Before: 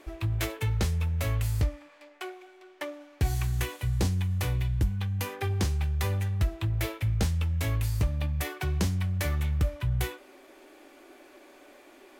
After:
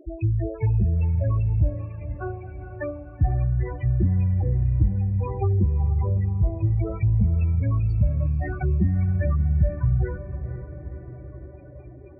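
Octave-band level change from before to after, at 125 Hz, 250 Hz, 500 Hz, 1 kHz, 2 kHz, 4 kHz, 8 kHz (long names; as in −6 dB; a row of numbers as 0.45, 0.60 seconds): +6.5 dB, +6.5 dB, +5.0 dB, +1.5 dB, −5.0 dB, below −30 dB, below −40 dB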